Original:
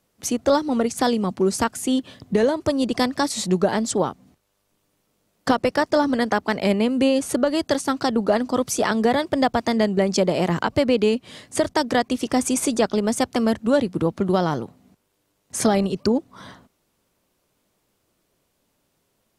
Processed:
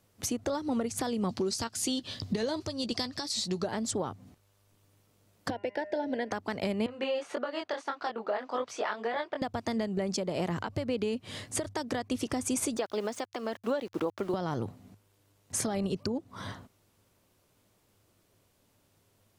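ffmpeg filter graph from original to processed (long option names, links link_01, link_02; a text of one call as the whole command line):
ffmpeg -i in.wav -filter_complex "[0:a]asettb=1/sr,asplit=3[link_01][link_02][link_03];[link_01]atrim=end=1.294[link_04];[link_02]atrim=start=1.29:end=3.67,asetpts=PTS-STARTPTS,afade=type=in:duration=0.004:curve=qsin,afade=type=out:start_time=2.376:duration=0.004:curve=qsin,equalizer=frequency=4600:width_type=o:width=1.1:gain=13.5,asplit=2[link_05][link_06];[link_06]adelay=13,volume=-13dB[link_07];[link_05][link_07]amix=inputs=2:normalize=0,atrim=end_sample=104958[link_08];[link_03]atrim=start=3.666[link_09];[link_04][link_08]acrossfade=duration=0.004:curve1=hsin:curve2=qsin[link_10];[link_10][link_09]acrossfade=duration=0.004:curve1=qsin:curve2=hsin,asettb=1/sr,asplit=3[link_11][link_12][link_13];[link_11]atrim=end=5.504[link_14];[link_12]atrim=start=5.5:end=6.31,asetpts=PTS-STARTPTS,afade=type=in:duration=0.004:curve=qsin,afade=type=out:start_time=0.806:duration=0.004:curve=qsin,asuperstop=centerf=1200:order=4:qfactor=1.8,acrossover=split=270 3500:gain=0.0891 1 0.1[link_15][link_16][link_17];[link_15][link_16][link_17]amix=inputs=3:normalize=0,bandreject=frequency=202.4:width_type=h:width=4,bandreject=frequency=404.8:width_type=h:width=4,bandreject=frequency=607.2:width_type=h:width=4,bandreject=frequency=809.6:width_type=h:width=4,bandreject=frequency=1012:width_type=h:width=4,bandreject=frequency=1214.4:width_type=h:width=4,bandreject=frequency=1416.8:width_type=h:width=4,bandreject=frequency=1619.2:width_type=h:width=4,bandreject=frequency=1821.6:width_type=h:width=4,bandreject=frequency=2024:width_type=h:width=4,bandreject=frequency=2226.4:width_type=h:width=4,bandreject=frequency=2428.8:width_type=h:width=4,bandreject=frequency=2631.2:width_type=h:width=4,bandreject=frequency=2833.6:width_type=h:width=4[link_18];[link_13]atrim=start=6.306[link_19];[link_14][link_18]acrossfade=duration=0.004:curve1=hsin:curve2=qsin[link_20];[link_20][link_19]acrossfade=duration=0.004:curve1=qsin:curve2=hsin,asettb=1/sr,asplit=3[link_21][link_22][link_23];[link_21]atrim=end=6.864[link_24];[link_22]atrim=start=6.86:end=9.42,asetpts=PTS-STARTPTS,afade=type=in:duration=0.004:curve=qsin,afade=type=out:start_time=2.556:duration=0.004:curve=qsin,flanger=delay=20:depth=4.2:speed=1.7,highpass=630,lowpass=2900[link_25];[link_23]atrim=start=9.416[link_26];[link_24][link_25]acrossfade=duration=0.004:curve1=hsin:curve2=qsin[link_27];[link_27][link_26]acrossfade=duration=0.004:curve1=qsin:curve2=hsin,asettb=1/sr,asplit=3[link_28][link_29][link_30];[link_28]atrim=end=12.774[link_31];[link_29]atrim=start=12.77:end=14.34,asetpts=PTS-STARTPTS,afade=type=in:duration=0.004:curve=qsin,afade=type=out:start_time=1.566:duration=0.004:curve=qsin,highpass=400,lowpass=4800,aeval=exprs='val(0)*gte(abs(val(0)),0.0075)':channel_layout=same[link_32];[link_30]atrim=start=14.336[link_33];[link_31][link_32]acrossfade=duration=0.004:curve1=hsin:curve2=qsin[link_34];[link_34][link_33]acrossfade=duration=0.004:curve1=qsin:curve2=hsin,equalizer=frequency=100:width=5:gain=14,acompressor=threshold=-24dB:ratio=6,alimiter=limit=-21dB:level=0:latency=1:release=372" out.wav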